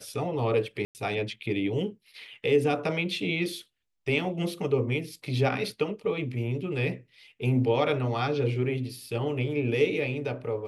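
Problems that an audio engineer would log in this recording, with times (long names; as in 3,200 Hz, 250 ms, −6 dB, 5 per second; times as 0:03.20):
0:00.85–0:00.95: drop-out 99 ms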